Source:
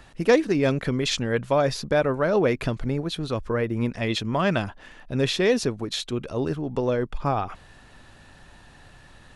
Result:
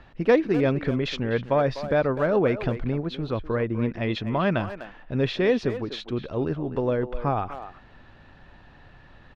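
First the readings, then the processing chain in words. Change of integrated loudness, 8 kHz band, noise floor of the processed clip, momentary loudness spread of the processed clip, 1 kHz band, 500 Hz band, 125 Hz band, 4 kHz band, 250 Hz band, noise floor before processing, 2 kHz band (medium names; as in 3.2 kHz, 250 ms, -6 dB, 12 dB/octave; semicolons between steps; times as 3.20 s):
-1.0 dB, under -15 dB, -51 dBFS, 9 LU, -1.0 dB, -0.5 dB, 0.0 dB, -6.5 dB, 0.0 dB, -51 dBFS, -2.0 dB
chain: distance through air 250 m; speakerphone echo 250 ms, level -11 dB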